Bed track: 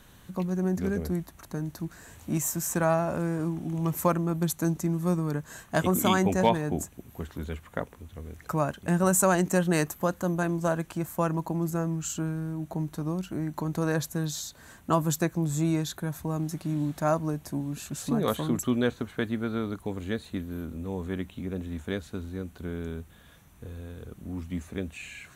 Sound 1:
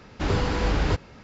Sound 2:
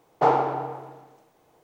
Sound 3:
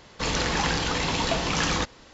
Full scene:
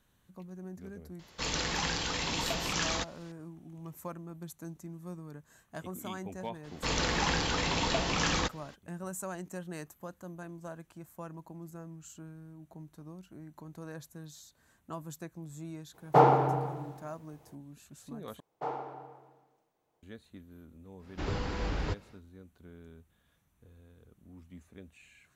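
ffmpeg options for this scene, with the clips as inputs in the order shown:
ffmpeg -i bed.wav -i cue0.wav -i cue1.wav -i cue2.wav -filter_complex "[3:a]asplit=2[link_01][link_02];[2:a]asplit=2[link_03][link_04];[0:a]volume=-17dB[link_05];[link_01]highshelf=frequency=2500:gain=6[link_06];[link_03]equalizer=frequency=130:width_type=o:width=1.7:gain=9.5[link_07];[link_05]asplit=2[link_08][link_09];[link_08]atrim=end=18.404[link_10];[link_04]atrim=end=1.63,asetpts=PTS-STARTPTS,volume=-17dB[link_11];[link_09]atrim=start=20.026[link_12];[link_06]atrim=end=2.13,asetpts=PTS-STARTPTS,volume=-9.5dB,afade=type=in:duration=0.004:curve=hsin,afade=type=out:start_time=2.126:duration=0.004:curve=hsin,adelay=1190[link_13];[link_02]atrim=end=2.13,asetpts=PTS-STARTPTS,volume=-4.5dB,afade=type=in:duration=0.02,afade=type=out:start_time=2.11:duration=0.02,adelay=6630[link_14];[link_07]atrim=end=1.63,asetpts=PTS-STARTPTS,volume=-2dB,afade=type=in:duration=0.02,afade=type=out:start_time=1.61:duration=0.02,adelay=15930[link_15];[1:a]atrim=end=1.23,asetpts=PTS-STARTPTS,volume=-10dB,afade=type=in:duration=0.1,afade=type=out:start_time=1.13:duration=0.1,adelay=20980[link_16];[link_10][link_11]acrossfade=duration=0.004:curve1=hsin:curve2=hsin[link_17];[link_17][link_12]acrossfade=duration=0.004:curve1=hsin:curve2=hsin[link_18];[link_18][link_13][link_14][link_15][link_16]amix=inputs=5:normalize=0" out.wav

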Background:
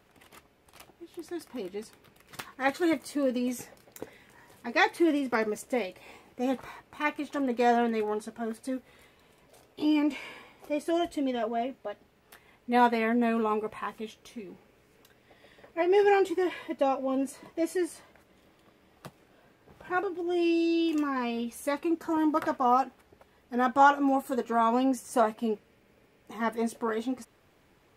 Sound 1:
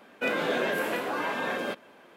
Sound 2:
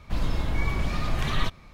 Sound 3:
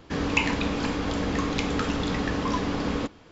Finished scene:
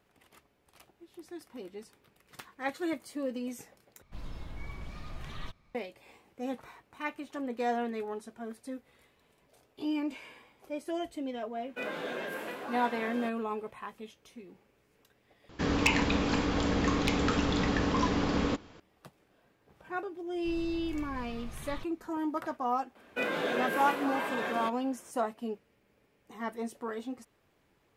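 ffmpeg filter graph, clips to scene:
ffmpeg -i bed.wav -i cue0.wav -i cue1.wav -i cue2.wav -filter_complex "[2:a]asplit=2[link_01][link_02];[1:a]asplit=2[link_03][link_04];[0:a]volume=-7dB[link_05];[3:a]aeval=exprs='0.224*(abs(mod(val(0)/0.224+3,4)-2)-1)':channel_layout=same[link_06];[link_05]asplit=3[link_07][link_08][link_09];[link_07]atrim=end=4.024[link_10];[link_01]atrim=end=1.73,asetpts=PTS-STARTPTS,volume=-16dB[link_11];[link_08]atrim=start=5.746:end=15.494[link_12];[link_06]atrim=end=3.31,asetpts=PTS-STARTPTS,volume=-1.5dB[link_13];[link_09]atrim=start=18.796[link_14];[link_03]atrim=end=2.16,asetpts=PTS-STARTPTS,volume=-9.5dB,afade=type=in:duration=0.004:curve=hsin,afade=type=out:start_time=2.156:duration=0.004:curve=hsin,adelay=11550[link_15];[link_02]atrim=end=1.73,asetpts=PTS-STARTPTS,volume=-17.5dB,afade=type=in:duration=0.004:curve=hsin,afade=type=out:start_time=1.726:duration=0.004:curve=hsin,adelay=20350[link_16];[link_04]atrim=end=2.16,asetpts=PTS-STARTPTS,volume=-4dB,afade=type=in:duration=0.004:curve=hsin,afade=type=out:start_time=2.156:duration=0.004:curve=hsin,adelay=22950[link_17];[link_10][link_11]acrossfade=duration=0.004:curve1=hsin:curve2=hsin[link_18];[link_18][link_12]acrossfade=duration=0.004:curve1=hsin:curve2=hsin[link_19];[link_19][link_13]acrossfade=duration=0.004:curve1=hsin:curve2=hsin[link_20];[link_20][link_14]acrossfade=duration=0.004:curve1=hsin:curve2=hsin[link_21];[link_21][link_15][link_16][link_17]amix=inputs=4:normalize=0" out.wav

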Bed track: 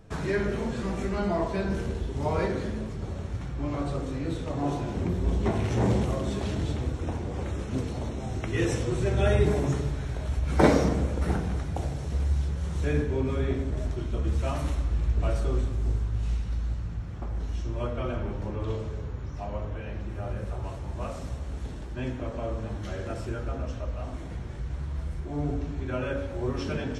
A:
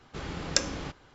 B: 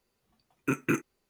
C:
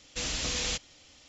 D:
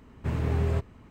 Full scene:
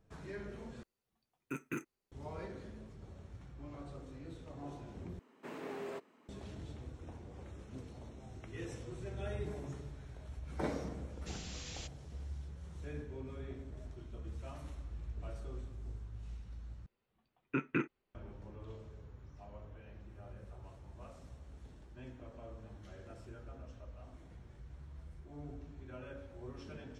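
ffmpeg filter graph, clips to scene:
ffmpeg -i bed.wav -i cue0.wav -i cue1.wav -i cue2.wav -i cue3.wav -filter_complex "[2:a]asplit=2[link_01][link_02];[0:a]volume=-18dB[link_03];[4:a]highpass=frequency=260:width=0.5412,highpass=frequency=260:width=1.3066[link_04];[link_02]lowpass=frequency=3600:width=0.5412,lowpass=frequency=3600:width=1.3066[link_05];[link_03]asplit=4[link_06][link_07][link_08][link_09];[link_06]atrim=end=0.834[link_10];[link_01]atrim=end=1.29,asetpts=PTS-STARTPTS,volume=-13dB[link_11];[link_07]atrim=start=2.116:end=5.194[link_12];[link_04]atrim=end=1.1,asetpts=PTS-STARTPTS,volume=-8.5dB[link_13];[link_08]atrim=start=6.286:end=16.864[link_14];[link_05]atrim=end=1.29,asetpts=PTS-STARTPTS,volume=-6.5dB[link_15];[link_09]atrim=start=18.146[link_16];[3:a]atrim=end=1.28,asetpts=PTS-STARTPTS,volume=-16.5dB,afade=type=in:duration=0.004:curve=hsin,afade=type=out:start_time=1.276:duration=0.004:curve=hsin,adelay=11100[link_17];[link_10][link_11]acrossfade=duration=0.004:curve1=hsin:curve2=hsin[link_18];[link_18][link_12]acrossfade=duration=0.004:curve1=hsin:curve2=hsin[link_19];[link_19][link_13]acrossfade=duration=0.004:curve1=hsin:curve2=hsin[link_20];[link_20][link_14]acrossfade=duration=0.004:curve1=hsin:curve2=hsin[link_21];[link_21][link_15]acrossfade=duration=0.004:curve1=hsin:curve2=hsin[link_22];[link_22][link_16]acrossfade=duration=0.004:curve1=hsin:curve2=hsin[link_23];[link_23][link_17]amix=inputs=2:normalize=0" out.wav

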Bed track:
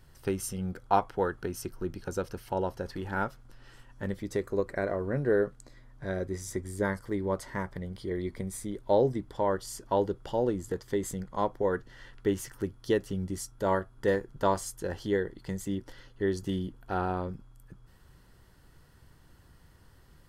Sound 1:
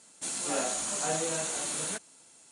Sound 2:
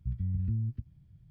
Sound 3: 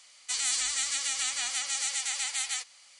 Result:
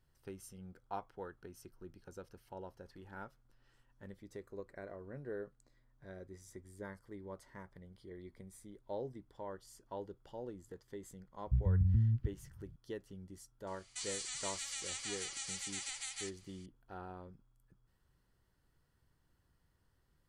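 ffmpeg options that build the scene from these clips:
ffmpeg -i bed.wav -i cue0.wav -i cue1.wav -i cue2.wav -filter_complex "[0:a]volume=-17.5dB[link_01];[2:a]lowshelf=frequency=100:gain=9[link_02];[3:a]alimiter=limit=-19.5dB:level=0:latency=1:release=358[link_03];[link_02]atrim=end=1.3,asetpts=PTS-STARTPTS,volume=-3dB,afade=type=in:duration=0.004:curve=hsin,afade=type=out:start_time=1.296:duration=0.004:curve=hsin,adelay=505386S[link_04];[link_03]atrim=end=2.99,asetpts=PTS-STARTPTS,volume=-9dB,afade=type=in:duration=0.004:curve=hsin,afade=type=out:start_time=2.986:duration=0.004:curve=hsin,adelay=13670[link_05];[link_01][link_04][link_05]amix=inputs=3:normalize=0" out.wav

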